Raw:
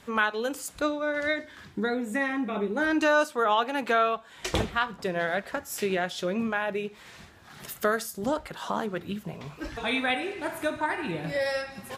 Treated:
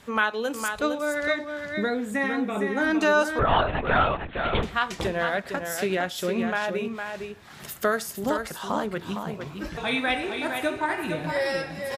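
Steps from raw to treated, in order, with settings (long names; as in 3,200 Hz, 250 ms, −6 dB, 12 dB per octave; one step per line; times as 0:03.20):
single-tap delay 459 ms −6.5 dB
0:03.39–0:04.63: linear-prediction vocoder at 8 kHz whisper
level +1.5 dB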